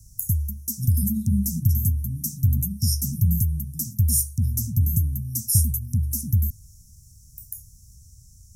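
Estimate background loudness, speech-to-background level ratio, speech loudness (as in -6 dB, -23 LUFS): -25.0 LUFS, -4.5 dB, -29.5 LUFS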